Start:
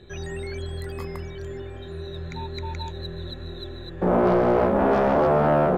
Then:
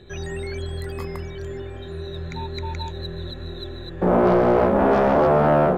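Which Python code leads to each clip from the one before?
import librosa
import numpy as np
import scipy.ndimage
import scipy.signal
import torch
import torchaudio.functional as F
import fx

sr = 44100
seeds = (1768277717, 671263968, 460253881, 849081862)

y = fx.end_taper(x, sr, db_per_s=110.0)
y = y * librosa.db_to_amplitude(2.5)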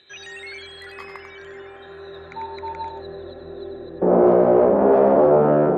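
y = fx.filter_sweep_bandpass(x, sr, from_hz=3100.0, to_hz=430.0, start_s=0.11, end_s=4.0, q=1.1)
y = y + 10.0 ** (-7.0 / 20.0) * np.pad(y, (int(94 * sr / 1000.0), 0))[:len(y)]
y = y * librosa.db_to_amplitude(4.0)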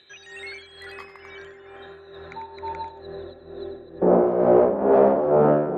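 y = x * (1.0 - 0.64 / 2.0 + 0.64 / 2.0 * np.cos(2.0 * np.pi * 2.2 * (np.arange(len(x)) / sr)))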